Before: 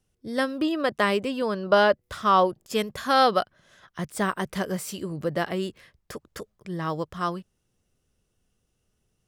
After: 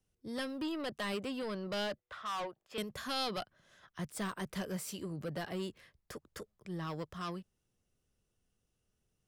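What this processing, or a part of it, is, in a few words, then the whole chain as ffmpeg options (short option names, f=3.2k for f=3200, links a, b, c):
one-band saturation: -filter_complex "[0:a]asettb=1/sr,asplit=3[a][b][c];[a]atrim=end=1.994[d];[b]atrim=start=1.99:end=2.78,asetpts=PTS-STARTPTS,afade=t=in:d=0.004:c=qsin,afade=t=out:st=0.786:d=0.004:c=qsin,acrossover=split=510 3400:gain=0.178 1 0.112[e][f][g];[e][f][g]amix=inputs=3:normalize=0[h];[c]atrim=start=2.776[i];[d][h]acrossfade=d=0.004:c1=hsin:c2=qsin[j];[j][i]acrossfade=d=0.004:c1=qsin:c2=hsin,acrossover=split=200|2600[k][l][m];[l]asoftclip=type=tanh:threshold=-29dB[n];[k][n][m]amix=inputs=3:normalize=0,volume=-7.5dB"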